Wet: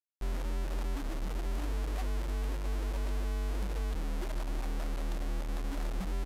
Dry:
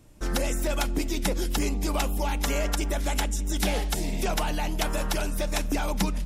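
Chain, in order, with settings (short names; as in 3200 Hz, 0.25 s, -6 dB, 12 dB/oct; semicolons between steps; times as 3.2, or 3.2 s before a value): spectral contrast raised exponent 3.1; limiter -25.5 dBFS, peak gain reduction 9 dB; formant shift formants -2 st; requantised 6-bit, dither none; downsampling 32000 Hz; gain -3.5 dB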